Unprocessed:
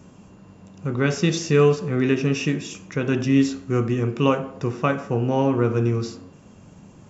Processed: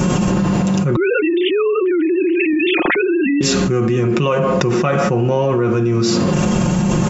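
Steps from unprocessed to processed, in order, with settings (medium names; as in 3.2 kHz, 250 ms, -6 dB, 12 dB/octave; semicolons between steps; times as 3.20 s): 0.96–3.41 s: formants replaced by sine waves; comb 5.6 ms, depth 68%; level flattener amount 100%; trim -3 dB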